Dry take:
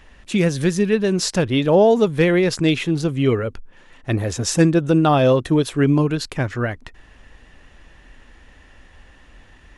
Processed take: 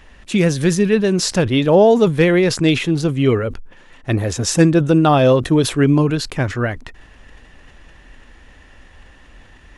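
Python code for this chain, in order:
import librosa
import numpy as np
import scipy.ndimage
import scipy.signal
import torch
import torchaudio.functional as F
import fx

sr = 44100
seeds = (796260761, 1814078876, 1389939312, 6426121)

y = fx.sustainer(x, sr, db_per_s=130.0)
y = y * 10.0 ** (2.5 / 20.0)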